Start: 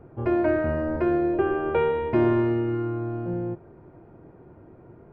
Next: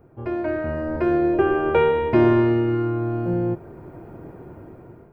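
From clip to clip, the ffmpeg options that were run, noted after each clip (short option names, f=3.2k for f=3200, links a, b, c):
-af "dynaudnorm=f=420:g=5:m=14dB,aemphasis=mode=production:type=50kf,volume=-4dB"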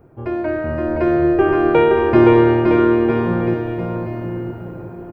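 -af "aecho=1:1:520|962|1338|1657|1928:0.631|0.398|0.251|0.158|0.1,volume=3.5dB"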